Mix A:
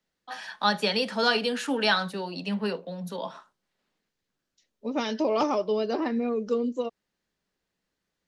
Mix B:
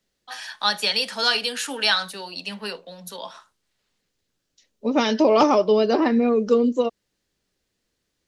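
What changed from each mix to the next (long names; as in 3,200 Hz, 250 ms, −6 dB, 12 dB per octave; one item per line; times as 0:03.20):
first voice: add spectral tilt +3.5 dB per octave
second voice +8.5 dB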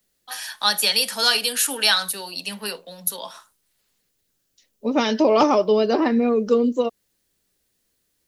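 first voice: remove high-frequency loss of the air 91 metres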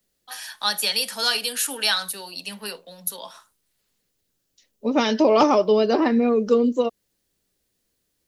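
first voice −3.5 dB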